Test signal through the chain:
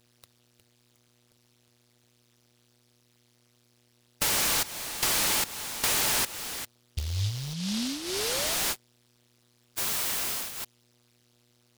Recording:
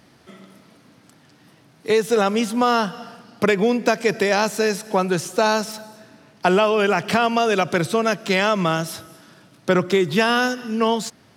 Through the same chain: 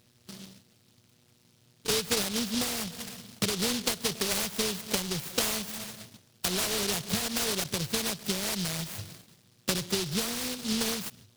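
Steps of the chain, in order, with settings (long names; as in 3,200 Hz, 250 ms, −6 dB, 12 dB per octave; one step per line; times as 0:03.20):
loose part that buzzes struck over −26 dBFS, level −9 dBFS
noise gate −46 dBFS, range −13 dB
thirty-one-band graphic EQ 100 Hz +12 dB, 315 Hz −10 dB, 1,000 Hz +6 dB, 12,500 Hz −10 dB
downward compressor 6 to 1, threshold −25 dBFS
pitch vibrato 3 Hz 7.1 cents
hum with harmonics 120 Hz, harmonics 35, −63 dBFS −2 dB per octave
linear-phase brick-wall band-stop 910–4,200 Hz
short delay modulated by noise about 4,100 Hz, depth 0.4 ms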